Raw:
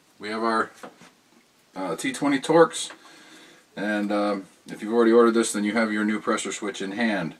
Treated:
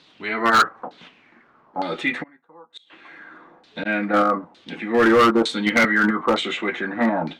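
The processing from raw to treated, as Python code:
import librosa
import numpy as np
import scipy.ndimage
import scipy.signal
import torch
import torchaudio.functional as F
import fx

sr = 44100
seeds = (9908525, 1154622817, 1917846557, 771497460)

p1 = fx.level_steps(x, sr, step_db=23)
p2 = x + (p1 * librosa.db_to_amplitude(-2.0))
p3 = fx.gate_flip(p2, sr, shuts_db=-18.0, range_db=-36, at=(2.22, 3.85), fade=0.02)
p4 = fx.filter_lfo_lowpass(p3, sr, shape='saw_down', hz=1.1, low_hz=810.0, high_hz=4100.0, q=4.1)
p5 = np.clip(p4, -10.0 ** (-11.0 / 20.0), 10.0 ** (-11.0 / 20.0))
y = fx.band_squash(p5, sr, depth_pct=40, at=(5.84, 6.81))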